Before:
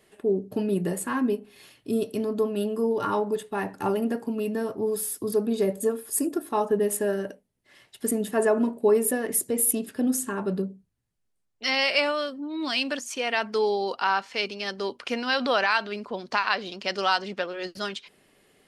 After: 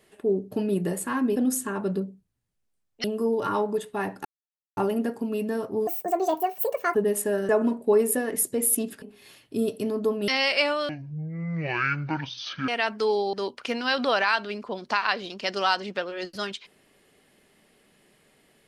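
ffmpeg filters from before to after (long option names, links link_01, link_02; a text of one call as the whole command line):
ffmpeg -i in.wav -filter_complex "[0:a]asplit=12[link_01][link_02][link_03][link_04][link_05][link_06][link_07][link_08][link_09][link_10][link_11][link_12];[link_01]atrim=end=1.362[link_13];[link_02]atrim=start=9.978:end=11.662[link_14];[link_03]atrim=start=2.618:end=3.83,asetpts=PTS-STARTPTS,afade=type=out:start_time=1.208:duration=0.004:curve=hsin,apad=pad_dur=0.52[link_15];[link_04]atrim=start=3.83:end=4.934,asetpts=PTS-STARTPTS,afade=type=in:duration=0.004:curve=hsin[link_16];[link_05]atrim=start=4.93:end=6.7,asetpts=PTS-STARTPTS,asetrate=72324,aresample=44100[link_17];[link_06]atrim=start=6.696:end=7.242[link_18];[link_07]atrim=start=8.448:end=9.982[link_19];[link_08]atrim=start=1.358:end=2.622[link_20];[link_09]atrim=start=11.658:end=12.274[link_21];[link_10]atrim=start=12.27:end=13.22,asetpts=PTS-STARTPTS,asetrate=23373,aresample=44100,atrim=end_sample=79047,asetpts=PTS-STARTPTS[link_22];[link_11]atrim=start=13.216:end=13.872[link_23];[link_12]atrim=start=14.748[link_24];[link_13][link_14]acrossfade=duration=0.004:curve1=hsin:curve2=hsin[link_25];[link_15][link_16]concat=n=2:v=0:a=1[link_26];[link_25][link_26]acrossfade=duration=0.004:curve1=hsin:curve2=hsin[link_27];[link_27][link_17]acrossfade=duration=0.004:curve1=hsin:curve2=hsin[link_28];[link_28][link_18]acrossfade=duration=0.004:curve1=hsin:curve2=hsin[link_29];[link_29][link_19]acrossfade=duration=0.004:curve1=hsin:curve2=hsin[link_30];[link_30][link_20]acrossfade=duration=0.004:curve1=hsin:curve2=hsin[link_31];[link_31][link_21]acrossfade=duration=0.004:curve1=hsin:curve2=hsin[link_32];[link_32][link_22]acrossfade=duration=0.004:curve1=hsin:curve2=hsin[link_33];[link_33][link_23]acrossfade=duration=0.004:curve1=hsin:curve2=hsin[link_34];[link_34][link_24]acrossfade=duration=0.004:curve1=hsin:curve2=hsin" out.wav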